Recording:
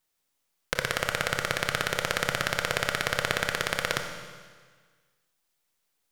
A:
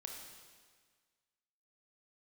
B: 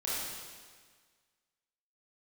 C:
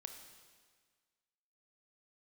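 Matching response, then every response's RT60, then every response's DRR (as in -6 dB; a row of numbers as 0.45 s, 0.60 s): C; 1.6 s, 1.6 s, 1.6 s; 1.0 dB, -8.5 dB, 5.0 dB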